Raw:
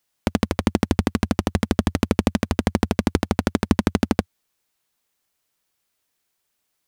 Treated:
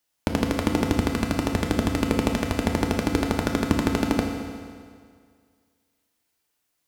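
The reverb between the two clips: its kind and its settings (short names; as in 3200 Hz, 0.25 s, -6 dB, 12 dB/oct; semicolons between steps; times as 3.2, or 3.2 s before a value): FDN reverb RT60 2 s, low-frequency decay 0.95×, high-frequency decay 0.9×, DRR 1.5 dB; gain -3 dB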